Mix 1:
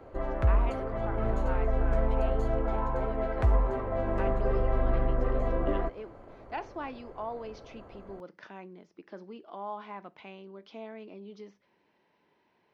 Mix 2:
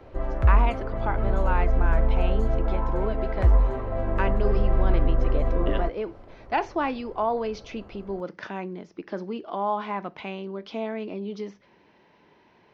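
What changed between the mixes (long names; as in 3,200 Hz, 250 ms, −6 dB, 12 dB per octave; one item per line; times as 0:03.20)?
speech +11.5 dB
master: add low-shelf EQ 120 Hz +7.5 dB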